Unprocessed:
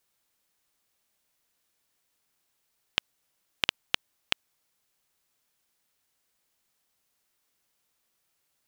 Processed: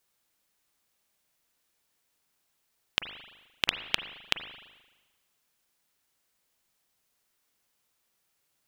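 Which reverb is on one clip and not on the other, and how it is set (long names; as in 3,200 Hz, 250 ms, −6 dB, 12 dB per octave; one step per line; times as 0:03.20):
spring reverb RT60 1.2 s, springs 37/43 ms, chirp 75 ms, DRR 8.5 dB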